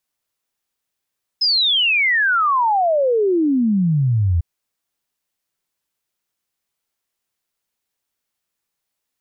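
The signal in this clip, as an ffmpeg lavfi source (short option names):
-f lavfi -i "aevalsrc='0.211*clip(min(t,3-t)/0.01,0,1)*sin(2*PI*5200*3/log(80/5200)*(exp(log(80/5200)*t/3)-1))':d=3:s=44100"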